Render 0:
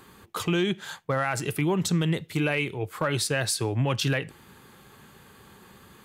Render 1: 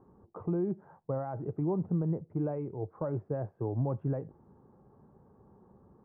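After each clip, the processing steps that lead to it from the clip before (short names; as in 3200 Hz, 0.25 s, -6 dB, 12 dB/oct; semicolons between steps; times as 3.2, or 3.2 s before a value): inverse Chebyshev low-pass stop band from 3800 Hz, stop band 70 dB; gain -5.5 dB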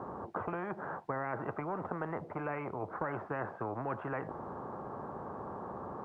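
band-pass 870 Hz, Q 0.83; spectral compressor 4:1; gain +5 dB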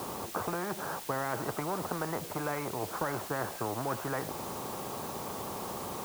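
requantised 8-bit, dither triangular; gain +3 dB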